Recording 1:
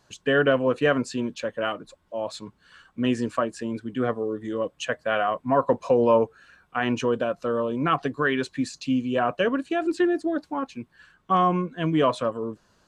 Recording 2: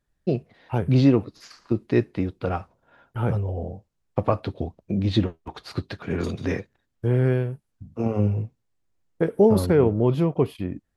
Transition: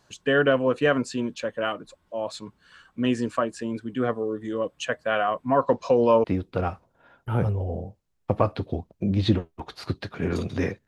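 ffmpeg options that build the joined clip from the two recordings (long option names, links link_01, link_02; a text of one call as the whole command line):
ffmpeg -i cue0.wav -i cue1.wav -filter_complex "[0:a]asettb=1/sr,asplit=3[link_01][link_02][link_03];[link_01]atrim=end=5.614[link_04];[link_02]atrim=start=5.61:end=6.24,asetpts=PTS-STARTPTS,afade=type=in:duration=0.004:curve=qsin,afade=type=out:start_time=0.626:duration=0.004:curve=qsin,lowpass=frequency=5400:width_type=q:width=2.1[link_05];[link_03]atrim=start=6.236[link_06];[link_04][link_05]acrossfade=duration=0.004:curve1=hsin:curve2=qsin[link_07];[link_07][link_06]acrossfade=duration=0.004:curve1=qsin:curve2=hsin,apad=whole_dur=10.87,atrim=end=10.87,atrim=end=6.242[link_08];[1:a]atrim=start=2.118:end=6.75[link_09];[link_08][link_09]acrossfade=duration=0.004:curve1=hsin:curve2=hsin" out.wav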